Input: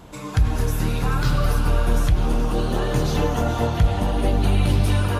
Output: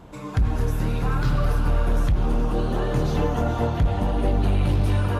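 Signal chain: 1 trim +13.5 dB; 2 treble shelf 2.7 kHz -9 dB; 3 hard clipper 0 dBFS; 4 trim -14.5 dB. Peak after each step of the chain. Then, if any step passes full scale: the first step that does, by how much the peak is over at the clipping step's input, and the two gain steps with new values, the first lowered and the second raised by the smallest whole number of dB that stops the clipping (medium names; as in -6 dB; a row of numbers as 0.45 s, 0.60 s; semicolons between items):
+6.5 dBFS, +6.5 dBFS, 0.0 dBFS, -14.5 dBFS; step 1, 6.5 dB; step 1 +6.5 dB, step 4 -7.5 dB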